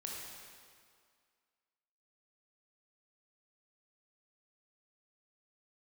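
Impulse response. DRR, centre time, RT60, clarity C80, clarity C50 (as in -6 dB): -2.5 dB, 112 ms, 2.1 s, 1.0 dB, -1.0 dB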